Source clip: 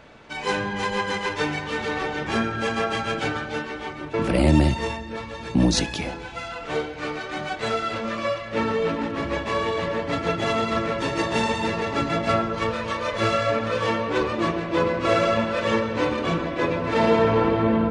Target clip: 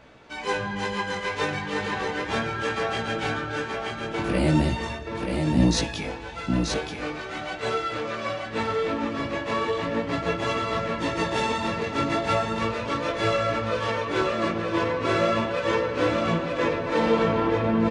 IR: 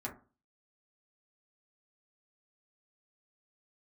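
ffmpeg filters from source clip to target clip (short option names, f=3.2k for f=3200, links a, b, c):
-af "flanger=delay=15.5:depth=6.2:speed=0.38,aecho=1:1:930:0.596"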